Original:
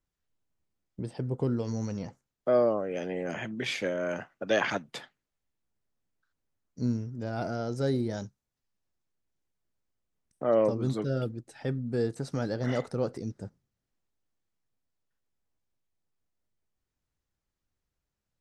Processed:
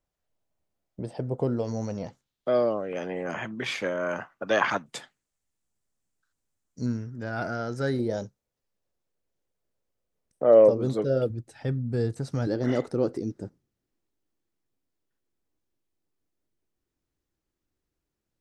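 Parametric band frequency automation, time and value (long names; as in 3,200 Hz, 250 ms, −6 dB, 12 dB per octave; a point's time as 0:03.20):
parametric band +10 dB 0.86 octaves
640 Hz
from 0:02.07 3,600 Hz
from 0:02.93 1,100 Hz
from 0:04.86 7,900 Hz
from 0:06.86 1,600 Hz
from 0:07.99 510 Hz
from 0:11.30 97 Hz
from 0:12.47 330 Hz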